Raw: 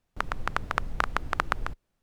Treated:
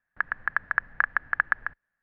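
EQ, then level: resonant low-pass 1.7 kHz, resonance Q 15; bass shelf 130 Hz -11.5 dB; peaking EQ 380 Hz -8 dB 0.96 oct; -8.0 dB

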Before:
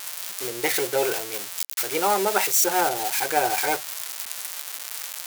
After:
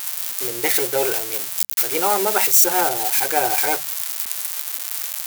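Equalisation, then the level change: bass shelf 65 Hz +9 dB; treble shelf 9.3 kHz +8 dB; hum notches 50/100/150/200 Hz; +1.5 dB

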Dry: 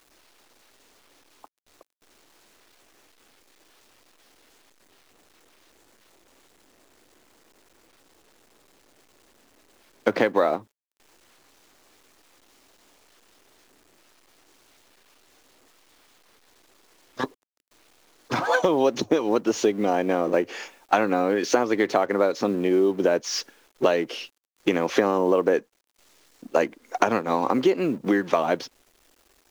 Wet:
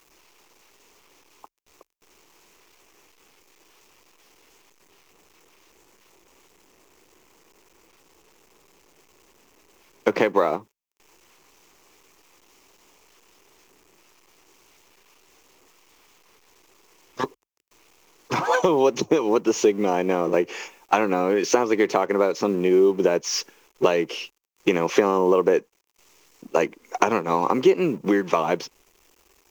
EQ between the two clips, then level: rippled EQ curve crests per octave 0.76, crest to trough 6 dB; +1.0 dB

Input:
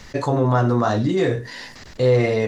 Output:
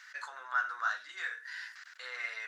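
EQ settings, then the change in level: ladder high-pass 1.4 kHz, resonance 75%; -1.5 dB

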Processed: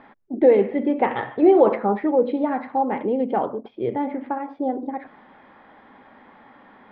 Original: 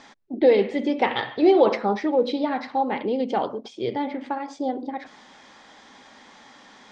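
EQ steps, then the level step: low-pass 2.1 kHz 12 dB/octave; distance through air 350 m; +3.0 dB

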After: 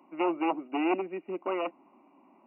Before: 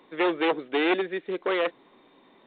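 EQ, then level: high-pass 110 Hz 12 dB/octave; brick-wall FIR low-pass 2.9 kHz; static phaser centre 460 Hz, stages 6; 0.0 dB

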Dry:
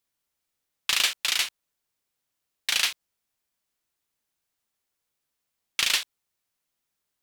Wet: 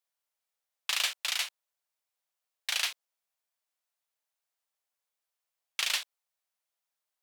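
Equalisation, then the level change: resonant low shelf 400 Hz -14 dB, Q 1.5; -6.5 dB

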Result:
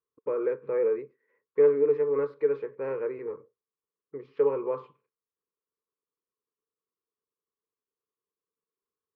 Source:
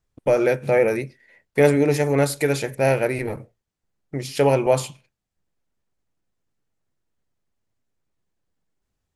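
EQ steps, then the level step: two resonant band-passes 700 Hz, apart 1.3 oct; distance through air 330 m; 0.0 dB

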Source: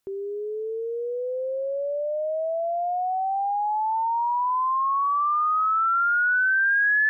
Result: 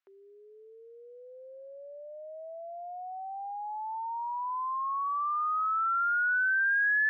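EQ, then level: high-pass 1.2 kHz 6 dB/octave; band-pass filter 1.6 kHz, Q 0.9; distance through air 89 m; -3.0 dB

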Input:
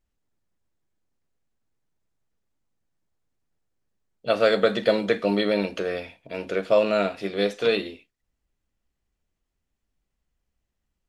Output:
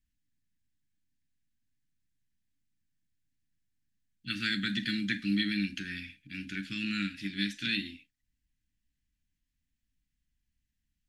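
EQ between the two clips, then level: Chebyshev band-stop 290–1600 Hz, order 4; -2.0 dB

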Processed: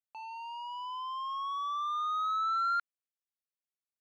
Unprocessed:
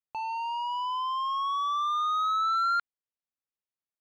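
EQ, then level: high-pass 900 Hz 6 dB/octave; dynamic bell 1.5 kHz, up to +6 dB, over -40 dBFS, Q 1.2; -8.0 dB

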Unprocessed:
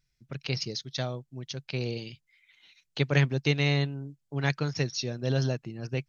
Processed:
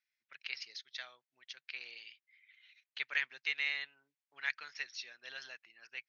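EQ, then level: ladder band-pass 2.3 kHz, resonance 40%; +5.0 dB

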